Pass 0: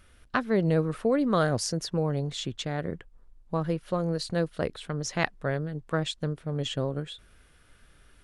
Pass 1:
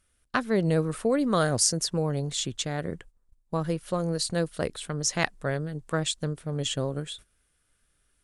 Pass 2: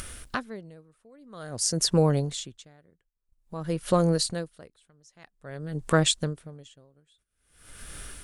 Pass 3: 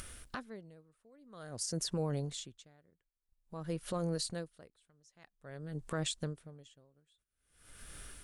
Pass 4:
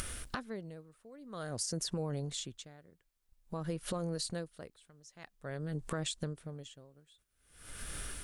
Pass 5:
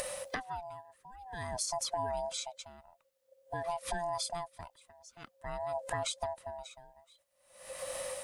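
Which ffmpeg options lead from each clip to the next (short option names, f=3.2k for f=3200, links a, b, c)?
-af "agate=range=-15dB:threshold=-48dB:ratio=16:detection=peak,equalizer=f=8.7k:t=o:w=1.3:g=13"
-af "acompressor=mode=upward:threshold=-27dB:ratio=2.5,aeval=exprs='val(0)*pow(10,-37*(0.5-0.5*cos(2*PI*0.5*n/s))/20)':c=same,volume=6.5dB"
-af "alimiter=limit=-17.5dB:level=0:latency=1:release=58,volume=-8.5dB"
-af "acompressor=threshold=-45dB:ratio=3,volume=8.5dB"
-af "afftfilt=real='real(if(lt(b,1008),b+24*(1-2*mod(floor(b/24),2)),b),0)':imag='imag(if(lt(b,1008),b+24*(1-2*mod(floor(b/24),2)),b),0)':win_size=2048:overlap=0.75,volume=1.5dB"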